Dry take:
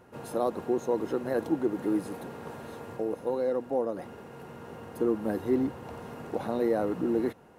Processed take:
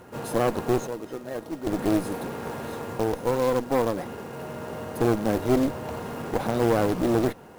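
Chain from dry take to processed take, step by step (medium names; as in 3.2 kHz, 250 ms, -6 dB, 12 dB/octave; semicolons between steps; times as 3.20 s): 0.87–1.67 s: feedback comb 620 Hz, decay 0.16 s, harmonics all, mix 80%; one-sided clip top -39 dBFS, bottom -19 dBFS; short-mantissa float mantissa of 2-bit; 4.35–5.95 s: whistle 620 Hz -49 dBFS; trim +8.5 dB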